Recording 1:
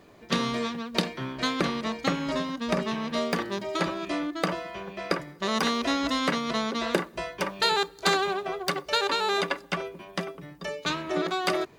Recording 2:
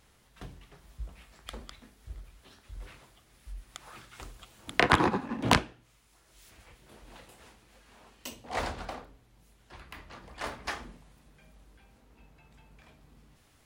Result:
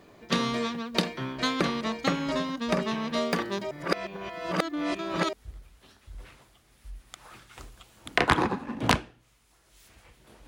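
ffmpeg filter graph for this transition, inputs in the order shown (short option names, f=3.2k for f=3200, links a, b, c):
-filter_complex "[0:a]apad=whole_dur=10.47,atrim=end=10.47,asplit=2[a][b];[a]atrim=end=3.712[c];[b]atrim=start=3.708:end=5.332,asetpts=PTS-STARTPTS,areverse[d];[1:a]atrim=start=1.948:end=7.09[e];[c][d]acrossfade=d=0.004:c1=hsin:c2=hsin[f];[f][e]acrossfade=d=0.004:c1=hsin:c2=hsin"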